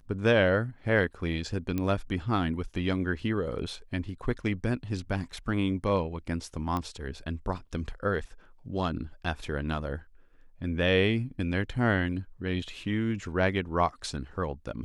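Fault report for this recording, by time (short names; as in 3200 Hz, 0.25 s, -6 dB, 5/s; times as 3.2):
1.78 pop -18 dBFS
6.77 pop -19 dBFS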